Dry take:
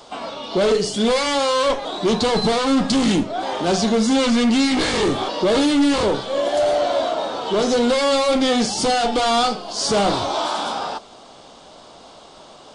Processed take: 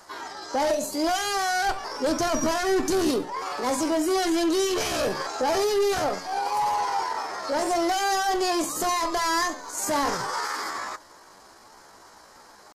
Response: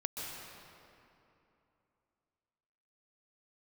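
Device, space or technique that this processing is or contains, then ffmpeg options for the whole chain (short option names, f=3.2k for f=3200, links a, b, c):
chipmunk voice: -filter_complex "[0:a]asettb=1/sr,asplit=3[a][b][c];[a]atrim=end=1.384[d];[b]atrim=start=1.38:end=3.12,asetpts=PTS-STARTPTS,afade=t=in:d=0.004:c=qsin,afade=t=out:st=1.736:d=0.004:c=qsin,lowshelf=f=110:g=6[e];[c]atrim=start=3.116[f];[d][e]acrossfade=d=0.004:c1=hsin:c2=qsin[g];[g][f]acrossfade=d=0.004:c1=qsin:c2=hsin,asetrate=62367,aresample=44100,atempo=0.707107,volume=-6.5dB"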